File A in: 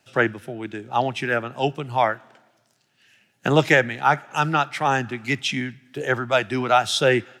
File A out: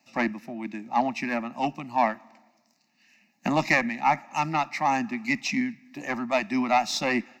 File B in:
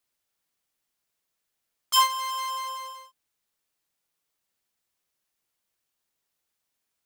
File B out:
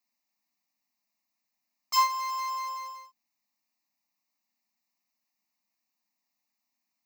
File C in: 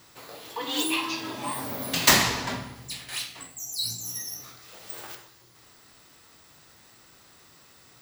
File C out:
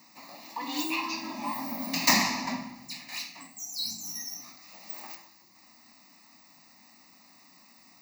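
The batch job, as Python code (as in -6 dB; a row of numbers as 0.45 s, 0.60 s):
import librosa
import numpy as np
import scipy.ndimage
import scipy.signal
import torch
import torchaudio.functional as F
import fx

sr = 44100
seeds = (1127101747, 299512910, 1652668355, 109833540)

y = fx.diode_clip(x, sr, knee_db=-13.5)
y = fx.low_shelf_res(y, sr, hz=150.0, db=-14.0, q=3.0)
y = fx.fixed_phaser(y, sr, hz=2200.0, stages=8)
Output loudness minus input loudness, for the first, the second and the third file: -4.5 LU, -3.5 LU, -3.5 LU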